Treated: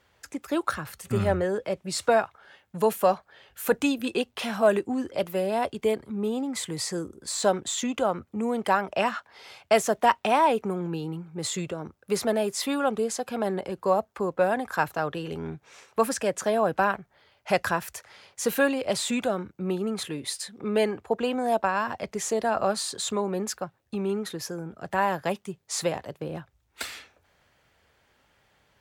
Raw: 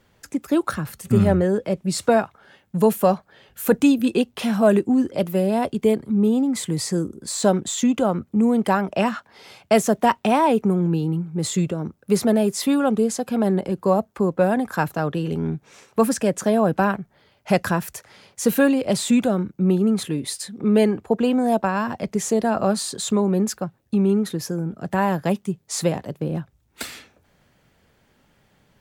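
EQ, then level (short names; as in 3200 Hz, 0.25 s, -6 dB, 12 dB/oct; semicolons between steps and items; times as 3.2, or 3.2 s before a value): HPF 49 Hz; bell 190 Hz -12.5 dB 2.1 oct; high shelf 6400 Hz -6 dB; 0.0 dB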